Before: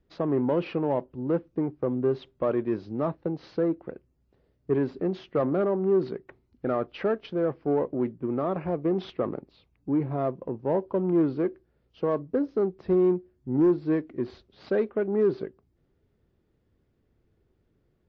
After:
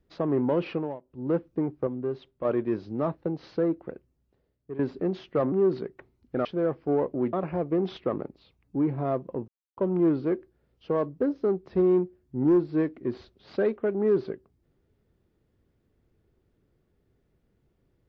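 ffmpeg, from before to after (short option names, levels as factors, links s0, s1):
-filter_complex "[0:a]asplit=11[s0][s1][s2][s3][s4][s5][s6][s7][s8][s9][s10];[s0]atrim=end=0.99,asetpts=PTS-STARTPTS,afade=t=out:st=0.73:d=0.26:silence=0.1[s11];[s1]atrim=start=0.99:end=1.03,asetpts=PTS-STARTPTS,volume=0.1[s12];[s2]atrim=start=1.03:end=1.872,asetpts=PTS-STARTPTS,afade=t=in:d=0.26:silence=0.1[s13];[s3]atrim=start=1.868:end=2.452,asetpts=PTS-STARTPTS,volume=0.531[s14];[s4]atrim=start=2.448:end=4.79,asetpts=PTS-STARTPTS,afade=t=out:st=1.452:d=0.89:silence=0.177828[s15];[s5]atrim=start=4.79:end=5.522,asetpts=PTS-STARTPTS,afade=t=in:d=0.004:c=hsin:silence=0.177828[s16];[s6]atrim=start=5.818:end=6.752[s17];[s7]atrim=start=7.238:end=8.122[s18];[s8]atrim=start=8.458:end=10.61,asetpts=PTS-STARTPTS,afade=t=out:st=2.148:d=0.004:c=hsin[s19];[s9]atrim=start=10.61:end=10.9,asetpts=PTS-STARTPTS,volume=0[s20];[s10]atrim=start=10.9,asetpts=PTS-STARTPTS,afade=t=in:d=0.004:c=hsin[s21];[s11][s12][s13]concat=n=3:v=0:a=1[s22];[s22][s14]acrossfade=d=0.004:c1=hsin:c2=hsin[s23];[s15][s16]concat=n=2:v=0:a=1[s24];[s23][s24]acrossfade=d=0.004:c1=hsin:c2=hsin[s25];[s25][s17]acrossfade=d=0.004:c1=hsin:c2=hsin[s26];[s26][s18]acrossfade=d=0.004:c1=hsin:c2=hsin[s27];[s19][s20][s21]concat=n=3:v=0:a=1[s28];[s27][s28]acrossfade=d=0.004:c1=hsin:c2=hsin"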